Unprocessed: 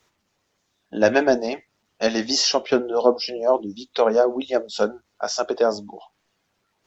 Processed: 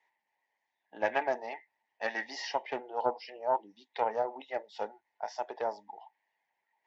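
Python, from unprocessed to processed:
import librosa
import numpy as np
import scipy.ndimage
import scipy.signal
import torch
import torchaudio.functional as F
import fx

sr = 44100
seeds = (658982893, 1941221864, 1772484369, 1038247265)

y = fx.double_bandpass(x, sr, hz=1300.0, octaves=1.1)
y = fx.doppler_dist(y, sr, depth_ms=0.1)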